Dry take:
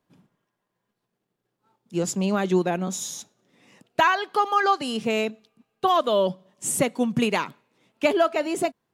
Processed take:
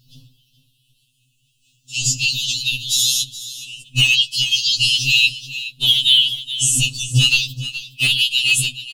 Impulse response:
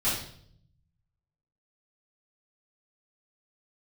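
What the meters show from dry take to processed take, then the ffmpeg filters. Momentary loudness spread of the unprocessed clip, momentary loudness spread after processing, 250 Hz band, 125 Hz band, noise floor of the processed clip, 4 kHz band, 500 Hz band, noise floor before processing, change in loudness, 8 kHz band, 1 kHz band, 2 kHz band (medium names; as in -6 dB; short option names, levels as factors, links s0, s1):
10 LU, 14 LU, -10.0 dB, +10.0 dB, -64 dBFS, +21.5 dB, under -25 dB, -80 dBFS, +8.5 dB, +13.0 dB, under -25 dB, +10.0 dB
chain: -filter_complex "[0:a]afftfilt=real='re*pow(10,8/40*sin(2*PI*(0.58*log(max(b,1)*sr/1024/100)/log(2)-(-0.4)*(pts-256)/sr)))':imag='im*pow(10,8/40*sin(2*PI*(0.58*log(max(b,1)*sr/1024/100)/log(2)-(-0.4)*(pts-256)/sr)))':win_size=1024:overlap=0.75,equalizer=f=3900:t=o:w=2.6:g=3,bandreject=f=47.73:t=h:w=4,bandreject=f=95.46:t=h:w=4,bandreject=f=143.19:t=h:w=4,bandreject=f=190.92:t=h:w=4,bandreject=f=238.65:t=h:w=4,bandreject=f=286.38:t=h:w=4,bandreject=f=334.11:t=h:w=4,bandreject=f=381.84:t=h:w=4,bandreject=f=429.57:t=h:w=4,bandreject=f=477.3:t=h:w=4,bandreject=f=525.03:t=h:w=4,bandreject=f=572.76:t=h:w=4,bandreject=f=620.49:t=h:w=4,bandreject=f=668.22:t=h:w=4,bandreject=f=715.95:t=h:w=4,bandreject=f=763.68:t=h:w=4,bandreject=f=811.41:t=h:w=4,bandreject=f=859.14:t=h:w=4,bandreject=f=906.87:t=h:w=4,bandreject=f=954.6:t=h:w=4,bandreject=f=1002.33:t=h:w=4,bandreject=f=1050.06:t=h:w=4,bandreject=f=1097.79:t=h:w=4,bandreject=f=1145.52:t=h:w=4,bandreject=f=1193.25:t=h:w=4,bandreject=f=1240.98:t=h:w=4,bandreject=f=1288.71:t=h:w=4,bandreject=f=1336.44:t=h:w=4,afftfilt=real='re*(1-between(b*sr/4096,110,2600))':imag='im*(1-between(b*sr/4096,110,2600))':win_size=4096:overlap=0.75,acrossover=split=2700[s0][s1];[s1]acompressor=threshold=0.02:ratio=4:attack=1:release=60[s2];[s0][s2]amix=inputs=2:normalize=0,highshelf=f=2400:g=-7.5,acrossover=split=1200[s3][s4];[s3]acontrast=62[s5];[s5][s4]amix=inputs=2:normalize=0,volume=37.6,asoftclip=hard,volume=0.0266,afftfilt=real='hypot(re,im)*cos(2*PI*random(0))':imag='hypot(re,im)*sin(2*PI*random(1))':win_size=512:overlap=0.75,aecho=1:1:422:0.178,alimiter=level_in=63.1:limit=0.891:release=50:level=0:latency=1,afftfilt=real='re*2.45*eq(mod(b,6),0)':imag='im*2.45*eq(mod(b,6),0)':win_size=2048:overlap=0.75,volume=0.891"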